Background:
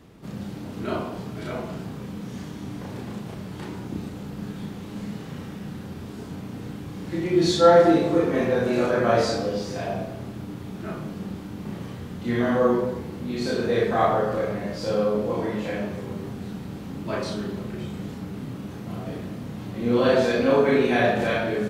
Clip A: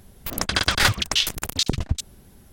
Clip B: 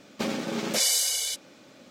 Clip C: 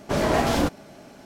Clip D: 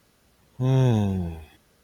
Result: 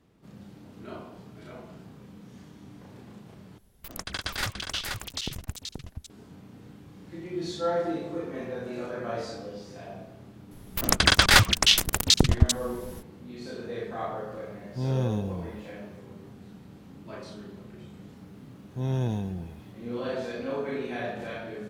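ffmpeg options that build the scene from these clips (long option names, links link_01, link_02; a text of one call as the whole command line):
ffmpeg -i bed.wav -i cue0.wav -i cue1.wav -i cue2.wav -i cue3.wav -filter_complex "[1:a]asplit=2[link_01][link_02];[4:a]asplit=2[link_03][link_04];[0:a]volume=-13dB[link_05];[link_01]aecho=1:1:480:0.631[link_06];[link_02]dynaudnorm=framelen=190:gausssize=3:maxgain=11.5dB[link_07];[link_05]asplit=2[link_08][link_09];[link_08]atrim=end=3.584[link_10];[link_06]atrim=end=2.52,asetpts=PTS-STARTPTS,volume=-12.5dB[link_11];[link_09]atrim=start=6.096[link_12];[link_07]atrim=end=2.52,asetpts=PTS-STARTPTS,volume=-2dB,afade=type=in:duration=0.004:curve=hsin,afade=type=out:start_time=2.516:duration=0.004:curve=hsin,adelay=10510[link_13];[link_03]atrim=end=1.83,asetpts=PTS-STARTPTS,volume=-7.5dB,afade=type=in:duration=0.004:curve=hsin,afade=type=out:start_time=1.826:duration=0.004:curve=hsin,adelay=14160[link_14];[link_04]atrim=end=1.83,asetpts=PTS-STARTPTS,volume=-8dB,afade=type=in:duration=0.004:curve=hsin,afade=type=out:start_time=1.826:duration=0.004:curve=hsin,adelay=18160[link_15];[link_10][link_11]acrossfade=duration=0.004:curve1=hsin:curve2=hsin[link_16];[link_16][link_12]acrossfade=duration=0.004:curve1=hsin:curve2=hsin[link_17];[link_17][link_13][link_14][link_15]amix=inputs=4:normalize=0" out.wav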